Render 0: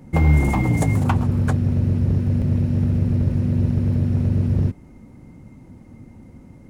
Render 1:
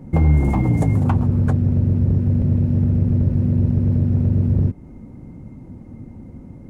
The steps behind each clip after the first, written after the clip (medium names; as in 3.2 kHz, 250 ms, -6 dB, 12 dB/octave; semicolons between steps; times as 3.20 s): tilt shelf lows +6 dB, about 1.2 kHz; compression 1.5:1, threshold -20 dBFS, peak gain reduction 5.5 dB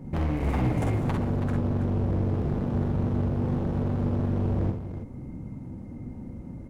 overload inside the chain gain 23 dB; on a send: multi-tap echo 47/63/326 ms -5.5/-7/-9 dB; on the sum: trim -3 dB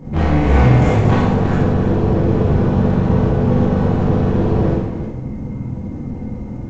reverberation RT60 0.85 s, pre-delay 20 ms, DRR -9 dB; trim +5 dB; G.722 64 kbps 16 kHz